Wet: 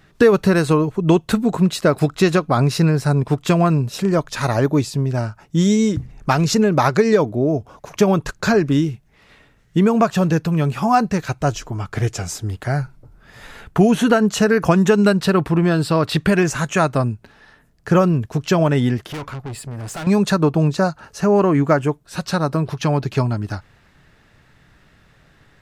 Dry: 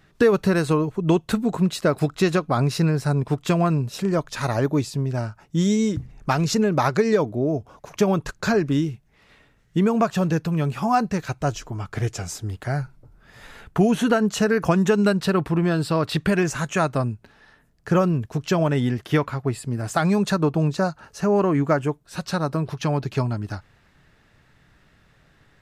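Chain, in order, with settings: 19.06–20.07 tube stage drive 31 dB, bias 0.3; gain +4.5 dB

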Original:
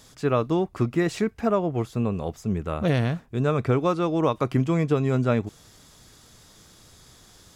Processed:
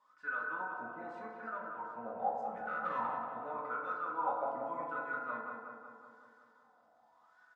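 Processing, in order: comb 4 ms, depth 55%; 2.19–3.06 sample leveller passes 2; wah 0.84 Hz 680–1500 Hz, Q 18; darkening echo 0.185 s, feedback 64%, low-pass 3000 Hz, level -4.5 dB; reverb RT60 1.1 s, pre-delay 3 ms, DRR -3 dB

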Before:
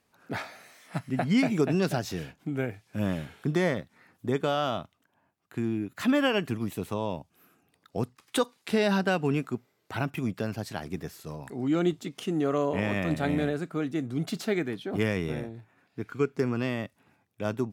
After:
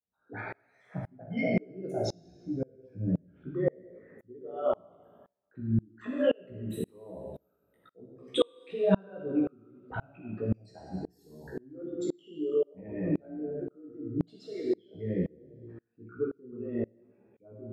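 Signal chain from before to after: formant sharpening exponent 3; two-slope reverb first 0.94 s, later 2.6 s, from -28 dB, DRR -1.5 dB; chorus 1.1 Hz, delay 15 ms, depth 2.8 ms; dB-ramp tremolo swelling 1.9 Hz, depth 32 dB; gain +2.5 dB

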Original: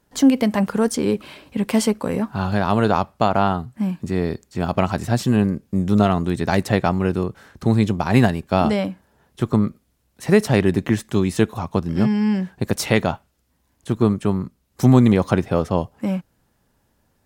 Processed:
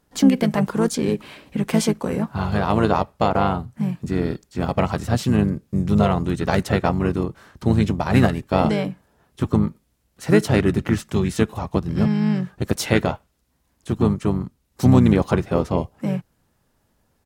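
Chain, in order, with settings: harmoniser -5 st -5 dB; gain -2 dB

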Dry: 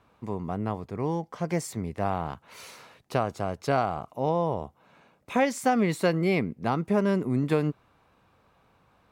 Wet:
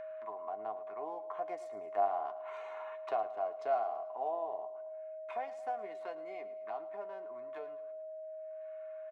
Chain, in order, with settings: Wiener smoothing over 9 samples; Doppler pass-by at 2.52, 7 m/s, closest 7.4 m; gate -58 dBFS, range -26 dB; HPF 160 Hz 12 dB/oct; comb 2.8 ms, depth 53%; in parallel at -3 dB: upward compressor, threshold -32 dBFS; on the sum: tilt shelf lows -8.5 dB, about 890 Hz; compressor 1.5:1, threshold -53 dBFS, peak gain reduction 12.5 dB; auto-wah 680–1800 Hz, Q 3, down, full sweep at -39 dBFS; flange 0.26 Hz, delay 8.8 ms, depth 1.2 ms, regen +51%; whine 630 Hz -51 dBFS; feedback echo 0.11 s, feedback 55%, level -16 dB; gain +9.5 dB

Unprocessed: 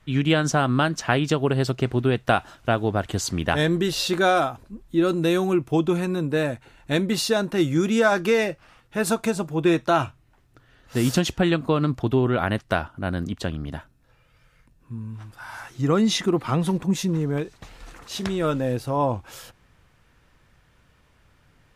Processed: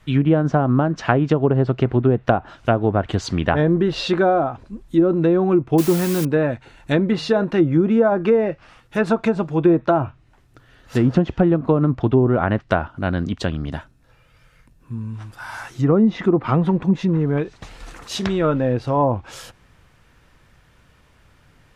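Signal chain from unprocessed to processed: 7.04–7.44 de-hum 154.6 Hz, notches 18; treble ducked by the level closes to 760 Hz, closed at -16 dBFS; 5.78–6.25 requantised 6-bit, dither triangular; gain +5 dB

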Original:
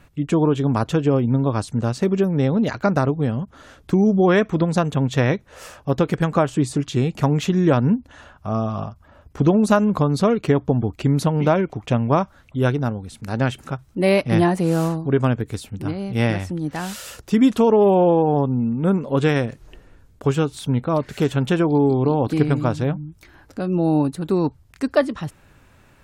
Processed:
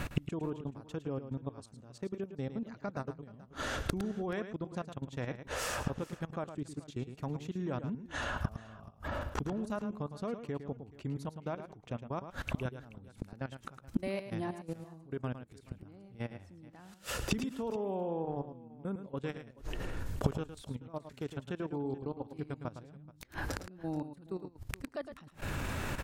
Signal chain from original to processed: 15.59–17.36 high shelf 2700 Hz -6 dB; level quantiser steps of 18 dB; flipped gate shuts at -35 dBFS, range -35 dB; on a send: tapped delay 0.109/0.429 s -10/-20 dB; on the sum: gain +17.5 dB

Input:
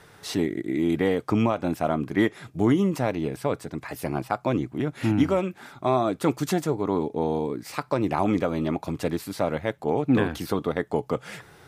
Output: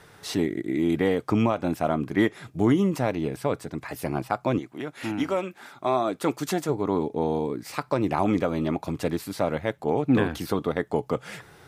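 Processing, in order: 4.58–6.68 HPF 680 Hz -> 220 Hz 6 dB/oct

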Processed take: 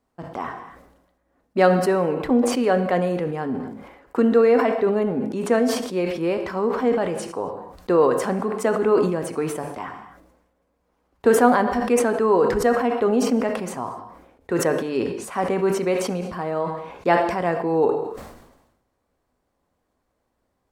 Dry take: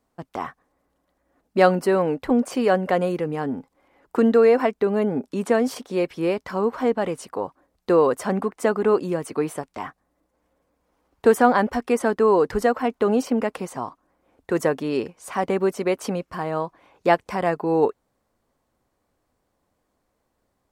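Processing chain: high shelf 4900 Hz -4.5 dB; non-linear reverb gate 0.28 s falling, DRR 8.5 dB; sustainer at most 56 dB/s; gain -1 dB

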